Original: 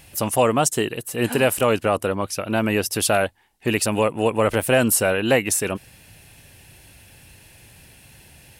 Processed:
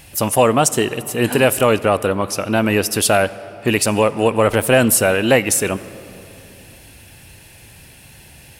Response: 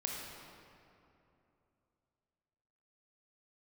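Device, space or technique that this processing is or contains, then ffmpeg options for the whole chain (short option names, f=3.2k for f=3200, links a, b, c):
saturated reverb return: -filter_complex "[0:a]asplit=2[a][b];[1:a]atrim=start_sample=2205[c];[b][c]afir=irnorm=-1:irlink=0,asoftclip=type=tanh:threshold=-17.5dB,volume=-12.5dB[d];[a][d]amix=inputs=2:normalize=0,volume=3.5dB"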